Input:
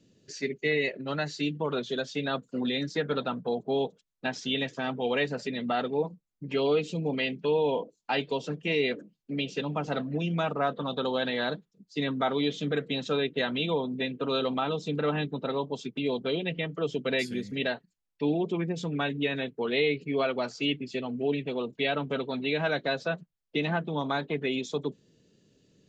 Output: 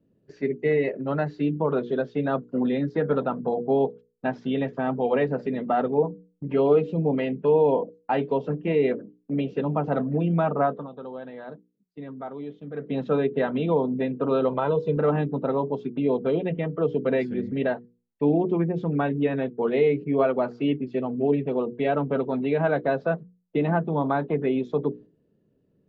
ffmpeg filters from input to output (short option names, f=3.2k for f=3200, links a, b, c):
-filter_complex "[0:a]asettb=1/sr,asplit=3[a][b][c];[a]atrim=end=14.494[d];[b]atrim=start=14.49:end=14.97,asetpts=PTS-STARTPTS,afade=t=in:d=0.004:c=qsin,afade=t=out:st=0.476:d=0.004:c=qsin,aecho=1:1:2:0.65,atrim=end_sample=21168[e];[c]atrim=start=14.966[f];[d][e]acrossfade=d=0.004:c1=hsin:c2=qsin[g];[g][f]acrossfade=d=0.004:c1=qsin:c2=hsin,asplit=3[h][i][j];[h]atrim=end=10.88,asetpts=PTS-STARTPTS,afade=t=out:st=10.62:d=0.26:silence=0.199526[k];[i]atrim=start=10.88:end=12.73,asetpts=PTS-STARTPTS,volume=-14dB[l];[j]atrim=start=12.73,asetpts=PTS-STARTPTS,afade=t=in:d=0.26:silence=0.199526[m];[k][l][m]concat=n=3:v=0:a=1,agate=range=-9dB:threshold=-50dB:ratio=16:detection=peak,lowpass=1.1k,bandreject=f=60:t=h:w=6,bandreject=f=120:t=h:w=6,bandreject=f=180:t=h:w=6,bandreject=f=240:t=h:w=6,bandreject=f=300:t=h:w=6,bandreject=f=360:t=h:w=6,bandreject=f=420:t=h:w=6,bandreject=f=480:t=h:w=6,volume=7dB"